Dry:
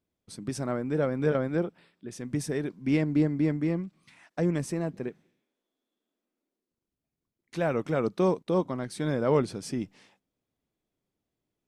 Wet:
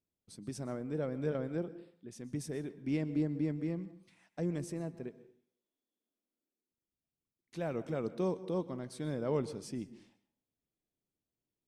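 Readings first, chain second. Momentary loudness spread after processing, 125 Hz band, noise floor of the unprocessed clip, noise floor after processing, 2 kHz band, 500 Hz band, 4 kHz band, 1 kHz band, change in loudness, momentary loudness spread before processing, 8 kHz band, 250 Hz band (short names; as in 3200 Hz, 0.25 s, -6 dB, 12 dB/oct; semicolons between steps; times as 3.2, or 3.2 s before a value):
14 LU, -8.0 dB, under -85 dBFS, under -85 dBFS, -12.0 dB, -9.0 dB, -9.0 dB, -11.5 dB, -8.5 dB, 15 LU, -8.0 dB, -8.0 dB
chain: bell 1400 Hz -5 dB 1.9 oct; plate-style reverb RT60 0.57 s, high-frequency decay 0.6×, pre-delay 0.11 s, DRR 16 dB; gain -8 dB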